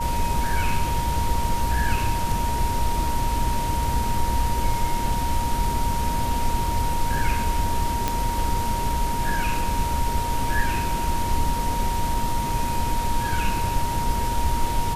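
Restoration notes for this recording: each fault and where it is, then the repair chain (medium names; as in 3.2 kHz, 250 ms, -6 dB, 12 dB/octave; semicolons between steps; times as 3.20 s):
whine 940 Hz -26 dBFS
8.08 s: pop -7 dBFS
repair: de-click; band-stop 940 Hz, Q 30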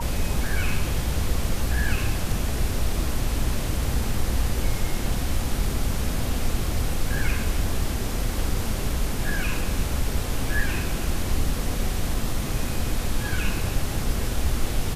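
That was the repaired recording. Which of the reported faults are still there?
nothing left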